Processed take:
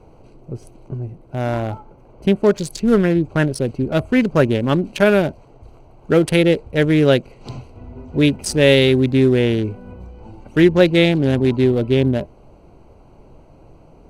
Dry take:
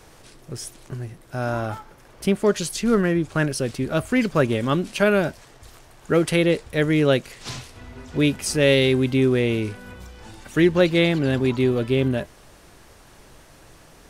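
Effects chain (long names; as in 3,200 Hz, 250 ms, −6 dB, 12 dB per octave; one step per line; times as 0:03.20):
adaptive Wiener filter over 25 samples
parametric band 1,200 Hz −5.5 dB 0.21 octaves
level +5 dB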